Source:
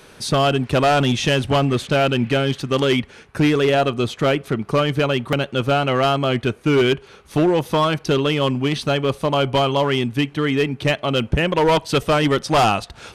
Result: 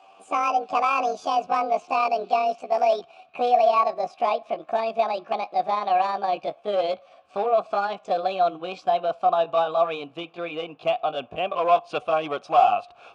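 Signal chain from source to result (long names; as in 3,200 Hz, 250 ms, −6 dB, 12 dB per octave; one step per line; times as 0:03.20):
pitch glide at a constant tempo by +11.5 semitones ending unshifted
formant filter a
downsampling to 22,050 Hz
level +5.5 dB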